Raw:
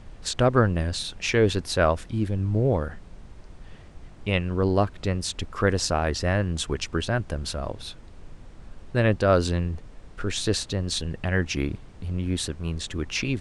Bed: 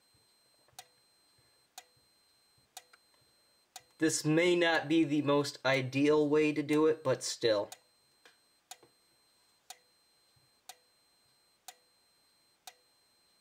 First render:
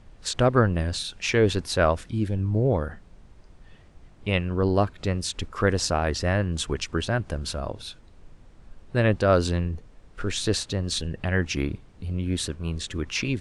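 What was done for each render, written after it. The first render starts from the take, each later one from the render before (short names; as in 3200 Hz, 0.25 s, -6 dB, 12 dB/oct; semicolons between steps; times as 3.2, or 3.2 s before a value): noise print and reduce 6 dB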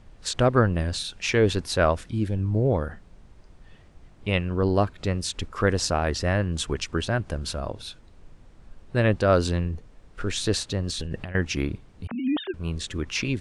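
10.89–11.35 negative-ratio compressor -32 dBFS; 12.07–12.54 sine-wave speech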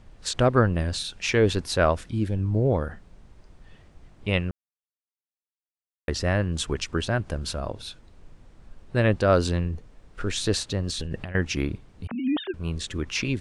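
4.51–6.08 mute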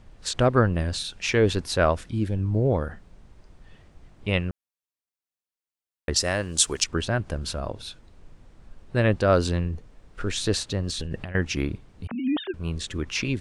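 6.16–6.84 tone controls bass -8 dB, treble +15 dB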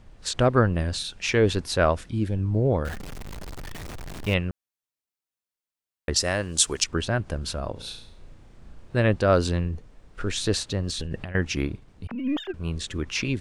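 2.85–4.34 zero-crossing step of -31.5 dBFS; 7.72–8.97 flutter echo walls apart 5.9 m, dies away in 0.51 s; 11.67–12.53 half-wave gain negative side -3 dB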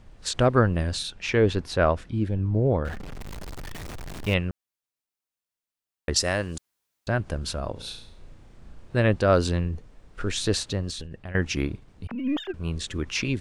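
1.1–3.2 LPF 2900 Hz 6 dB/oct; 6.58–7.07 room tone; 10.72–11.25 fade out, to -15 dB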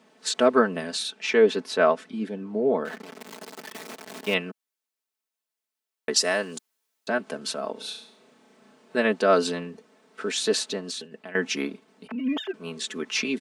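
HPF 240 Hz 24 dB/oct; comb 4.6 ms, depth 75%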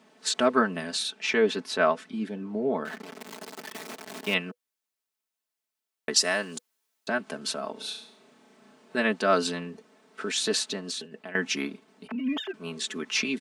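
notch 490 Hz, Q 16; dynamic EQ 460 Hz, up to -5 dB, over -35 dBFS, Q 0.94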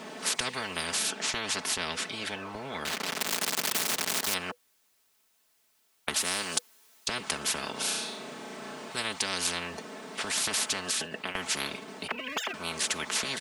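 spectral compressor 10:1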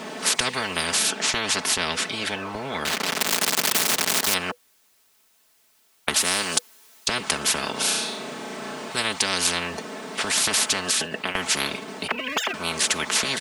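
gain +7.5 dB; limiter -2 dBFS, peak gain reduction 1 dB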